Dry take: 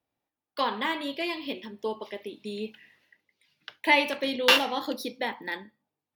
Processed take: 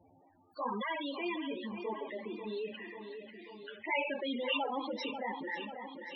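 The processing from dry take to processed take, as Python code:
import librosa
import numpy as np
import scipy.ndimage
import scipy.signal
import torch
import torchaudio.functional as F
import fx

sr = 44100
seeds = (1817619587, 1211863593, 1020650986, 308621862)

y = fx.transient(x, sr, attack_db=-7, sustain_db=1)
y = fx.env_flanger(y, sr, rest_ms=11.3, full_db=-14.0)
y = fx.spec_topn(y, sr, count=16)
y = fx.echo_feedback(y, sr, ms=540, feedback_pct=46, wet_db=-16.0)
y = fx.env_flatten(y, sr, amount_pct=50)
y = y * 10.0 ** (-6.0 / 20.0)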